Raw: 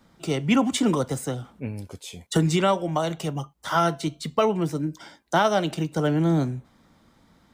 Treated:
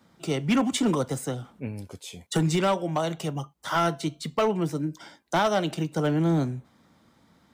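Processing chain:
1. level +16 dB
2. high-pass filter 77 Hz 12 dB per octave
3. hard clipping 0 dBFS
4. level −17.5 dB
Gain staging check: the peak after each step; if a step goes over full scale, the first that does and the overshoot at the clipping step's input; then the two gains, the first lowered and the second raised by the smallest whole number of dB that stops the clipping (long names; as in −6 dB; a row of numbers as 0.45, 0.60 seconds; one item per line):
+5.5, +6.5, 0.0, −17.5 dBFS
step 1, 6.5 dB
step 1 +9 dB, step 4 −10.5 dB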